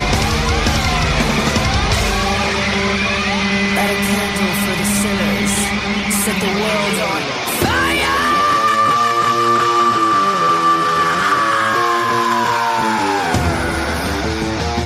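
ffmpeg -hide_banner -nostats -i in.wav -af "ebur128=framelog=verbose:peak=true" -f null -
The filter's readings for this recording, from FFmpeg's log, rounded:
Integrated loudness:
  I:         -15.3 LUFS
  Threshold: -25.3 LUFS
Loudness range:
  LRA:         2.7 LU
  Threshold: -35.0 LUFS
  LRA low:   -16.1 LUFS
  LRA high:  -13.5 LUFS
True peak:
  Peak:       -4.5 dBFS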